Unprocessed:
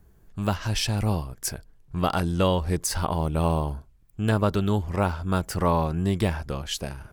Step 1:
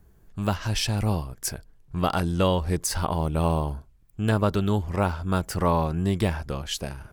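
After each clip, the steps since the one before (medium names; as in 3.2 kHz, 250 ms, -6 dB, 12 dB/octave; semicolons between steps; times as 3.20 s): no audible change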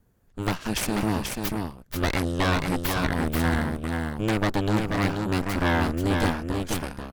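full-wave rectifier; Chebyshev shaper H 3 -20 dB, 6 -13 dB, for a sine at -9 dBFS; delay 486 ms -4.5 dB; trim -2 dB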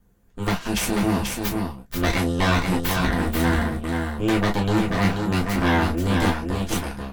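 reverberation, pre-delay 3 ms, DRR 0 dB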